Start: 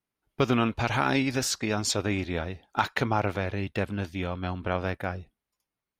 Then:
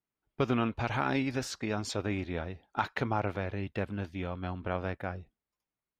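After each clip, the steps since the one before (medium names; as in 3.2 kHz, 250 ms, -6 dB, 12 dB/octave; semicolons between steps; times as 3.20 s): treble shelf 4.5 kHz -11 dB; trim -4.5 dB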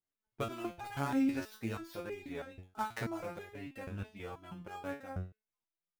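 dead-time distortion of 0.079 ms; resonator arpeggio 6.2 Hz 92–410 Hz; trim +5 dB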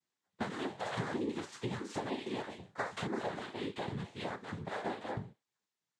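compression 10:1, threshold -40 dBFS, peak gain reduction 13 dB; noise-vocoded speech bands 6; trim +7 dB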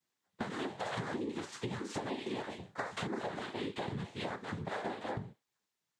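compression, threshold -37 dBFS, peak gain reduction 7 dB; trim +3 dB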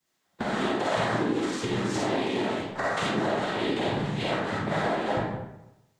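reverberation RT60 0.90 s, pre-delay 10 ms, DRR -5 dB; trim +6 dB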